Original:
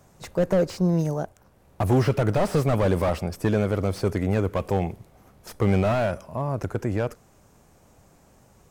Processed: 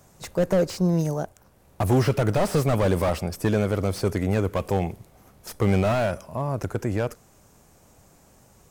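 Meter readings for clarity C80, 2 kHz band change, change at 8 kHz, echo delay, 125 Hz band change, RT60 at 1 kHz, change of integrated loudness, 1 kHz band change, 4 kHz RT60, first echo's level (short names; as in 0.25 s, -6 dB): none, +1.0 dB, +4.5 dB, none, 0.0 dB, none, 0.0 dB, +0.5 dB, none, none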